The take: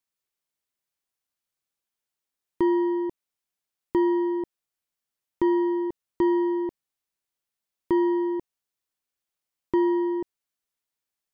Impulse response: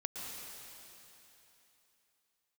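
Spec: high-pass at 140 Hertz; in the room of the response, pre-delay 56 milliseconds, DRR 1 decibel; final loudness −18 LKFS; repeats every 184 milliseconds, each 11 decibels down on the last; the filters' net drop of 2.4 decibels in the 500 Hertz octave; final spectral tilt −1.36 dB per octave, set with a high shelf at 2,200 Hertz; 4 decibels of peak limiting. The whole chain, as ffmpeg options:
-filter_complex "[0:a]highpass=140,equalizer=frequency=500:width_type=o:gain=-4.5,highshelf=frequency=2200:gain=-4,alimiter=limit=-20dB:level=0:latency=1,aecho=1:1:184|368|552:0.282|0.0789|0.0221,asplit=2[link_01][link_02];[1:a]atrim=start_sample=2205,adelay=56[link_03];[link_02][link_03]afir=irnorm=-1:irlink=0,volume=-2dB[link_04];[link_01][link_04]amix=inputs=2:normalize=0,volume=15.5dB"

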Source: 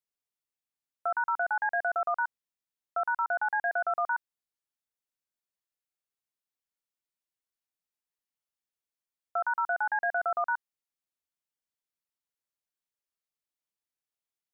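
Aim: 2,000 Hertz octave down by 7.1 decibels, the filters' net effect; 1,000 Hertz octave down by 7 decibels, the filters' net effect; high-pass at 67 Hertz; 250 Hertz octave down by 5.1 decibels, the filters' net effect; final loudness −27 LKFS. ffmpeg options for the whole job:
ffmpeg -i in.wav -af "highpass=67,equalizer=frequency=250:width_type=o:gain=-7.5,equalizer=frequency=1000:width_type=o:gain=-8,equalizer=frequency=2000:width_type=o:gain=-6,volume=10dB" out.wav

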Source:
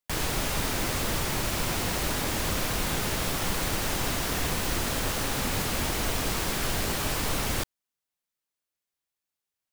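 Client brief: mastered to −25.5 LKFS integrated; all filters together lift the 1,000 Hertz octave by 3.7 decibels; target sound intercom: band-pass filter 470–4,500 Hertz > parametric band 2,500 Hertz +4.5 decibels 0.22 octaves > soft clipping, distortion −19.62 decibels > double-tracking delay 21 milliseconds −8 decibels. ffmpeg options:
ffmpeg -i in.wav -filter_complex "[0:a]highpass=470,lowpass=4500,equalizer=frequency=1000:width_type=o:gain=5,equalizer=frequency=2500:width_type=o:width=0.22:gain=4.5,asoftclip=threshold=-24dB,asplit=2[link_01][link_02];[link_02]adelay=21,volume=-8dB[link_03];[link_01][link_03]amix=inputs=2:normalize=0,volume=5dB" out.wav

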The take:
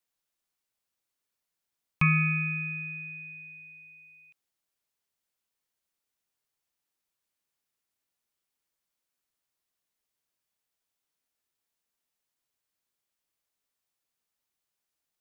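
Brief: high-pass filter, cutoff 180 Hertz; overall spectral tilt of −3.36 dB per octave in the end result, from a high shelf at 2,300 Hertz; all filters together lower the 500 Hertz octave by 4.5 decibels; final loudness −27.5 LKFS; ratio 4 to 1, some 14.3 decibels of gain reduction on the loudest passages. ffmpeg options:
ffmpeg -i in.wav -af "highpass=180,equalizer=frequency=500:width_type=o:gain=-7,highshelf=frequency=2300:gain=5.5,acompressor=threshold=-37dB:ratio=4,volume=10.5dB" out.wav

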